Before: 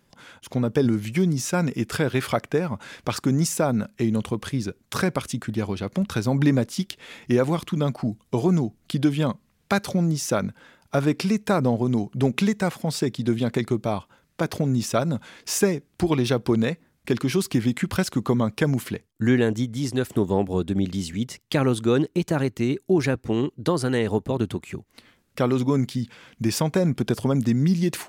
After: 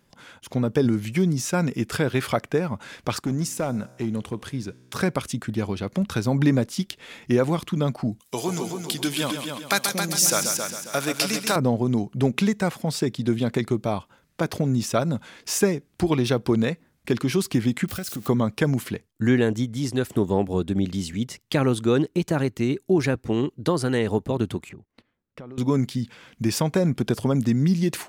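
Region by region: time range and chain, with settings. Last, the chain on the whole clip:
3.21–5.01 resonator 63 Hz, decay 1.5 s, mix 40% + overloaded stage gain 18.5 dB
8.2–11.56 tilt +4 dB/oct + multi-head echo 0.135 s, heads first and second, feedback 43%, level -8 dB
17.88–18.28 switching spikes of -25 dBFS + Butterworth band-stop 970 Hz, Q 4.9 + compressor 3:1, threshold -30 dBFS
24.69–25.58 gate -52 dBFS, range -15 dB + LPF 1400 Hz 6 dB/oct + compressor 5:1, threshold -38 dBFS
whole clip: dry

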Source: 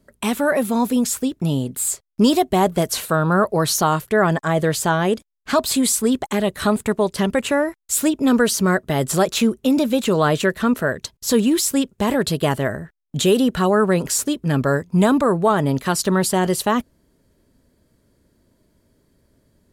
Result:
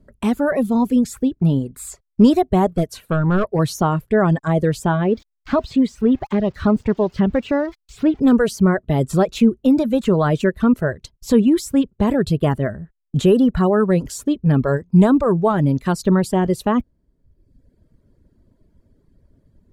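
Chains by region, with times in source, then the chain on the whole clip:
2.73–3.59 hard clip -14 dBFS + upward expander, over -28 dBFS
5.04–8.2 switching spikes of -16 dBFS + air absorption 210 m
whole clip: reverb removal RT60 0.97 s; tilt -3 dB/oct; gain -2 dB

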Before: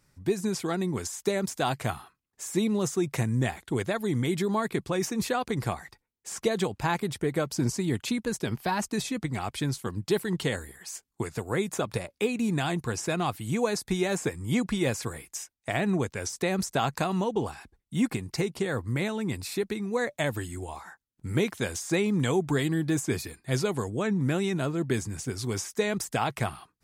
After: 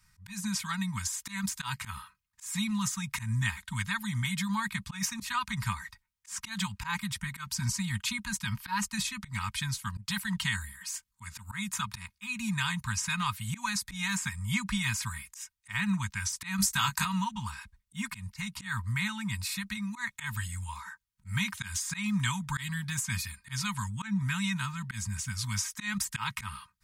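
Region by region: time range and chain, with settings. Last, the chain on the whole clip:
16.56–17.05 high shelf 6300 Hz +9 dB + doubler 20 ms -7 dB
whole clip: Chebyshev band-stop 200–970 Hz, order 4; comb 3.2 ms, depth 52%; auto swell 0.121 s; gain +2 dB

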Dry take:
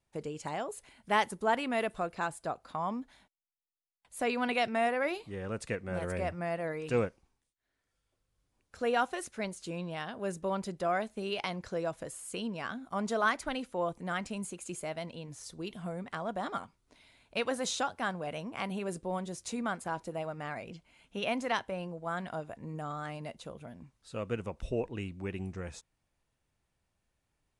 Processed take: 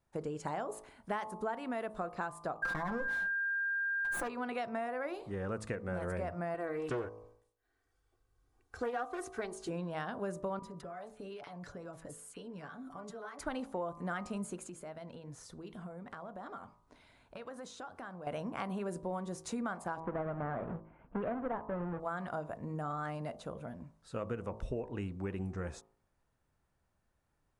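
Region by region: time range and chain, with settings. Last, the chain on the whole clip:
2.62–4.27 minimum comb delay 5.8 ms + whine 1600 Hz -46 dBFS + fast leveller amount 100%
6.54–9.69 comb 2.6 ms, depth 72% + Doppler distortion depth 0.37 ms
10.59–13.39 comb 6.9 ms, depth 48% + compressor 10:1, threshold -44 dBFS + bands offset in time highs, lows 30 ms, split 1200 Hz
14.67–18.27 high shelf 9200 Hz -5 dB + compressor, threshold -45 dBFS
20–22 half-waves squared off + Gaussian blur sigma 4.7 samples
whole clip: resonant high shelf 1900 Hz -6 dB, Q 1.5; de-hum 54.05 Hz, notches 23; compressor 10:1, threshold -36 dBFS; gain +2.5 dB

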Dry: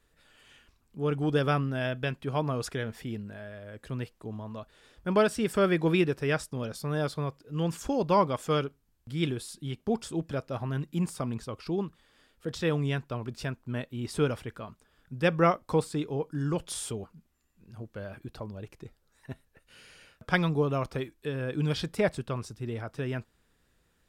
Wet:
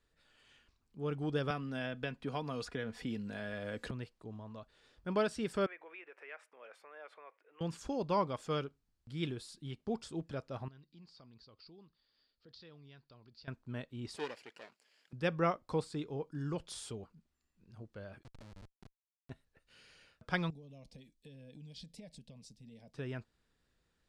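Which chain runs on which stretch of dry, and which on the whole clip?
1.5–3.91 comb 4.1 ms, depth 37% + three-band squash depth 100%
5.66–7.61 resonant high shelf 3200 Hz -12.5 dB, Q 3 + compressor 4:1, threshold -36 dBFS + HPF 500 Hz 24 dB/oct
10.68–13.48 ladder low-pass 4900 Hz, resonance 75% + compressor 2:1, threshold -51 dBFS
14.16–15.13 minimum comb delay 0.41 ms + HPF 460 Hz + mismatched tape noise reduction encoder only
18.23–19.3 bell 450 Hz -3.5 dB 0.33 oct + Schmitt trigger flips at -39 dBFS
20.5–22.94 bell 970 Hz -13 dB 1.9 oct + compressor 16:1, threshold -36 dBFS + fixed phaser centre 360 Hz, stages 6
whole clip: LPF 8200 Hz 12 dB/oct; bell 4400 Hz +4 dB 0.43 oct; gain -8.5 dB

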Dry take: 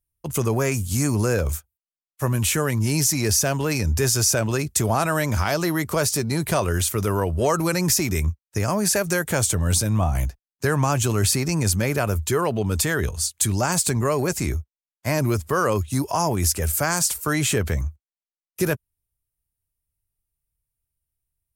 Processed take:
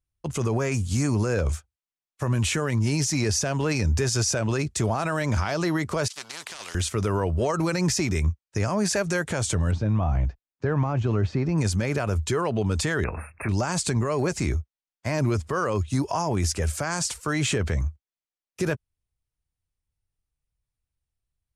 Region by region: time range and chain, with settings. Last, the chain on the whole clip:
6.08–6.75 HPF 1500 Hz + negative-ratio compressor -33 dBFS, ratio -0.5 + spectral compressor 4:1
9.71–11.58 de-esser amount 85% + air absorption 160 m
13.04–13.49 brick-wall FIR band-stop 2700–8700 Hz + air absorption 340 m + spectral compressor 2:1
whole clip: Bessel low-pass 6100 Hz, order 4; limiter -15.5 dBFS

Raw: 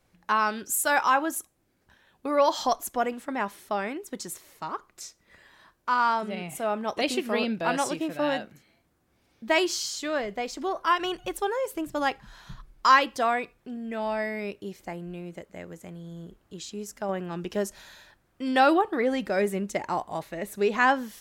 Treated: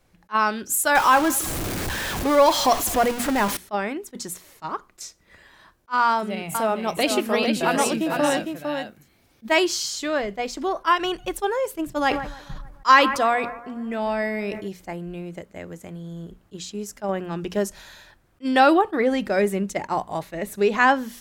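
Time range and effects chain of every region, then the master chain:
0.95–3.57 zero-crossing step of -26.5 dBFS + echo 0.2 s -21.5 dB
6.09–9.56 de-esser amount 30% + high shelf 10000 Hz +9.5 dB + echo 0.455 s -5.5 dB
11.89–14.68 analogue delay 0.148 s, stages 2048, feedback 57%, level -18 dB + sustainer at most 80 dB/s
whole clip: low shelf 130 Hz +5 dB; notches 60/120/180/240 Hz; attack slew limiter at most 550 dB/s; gain +4 dB

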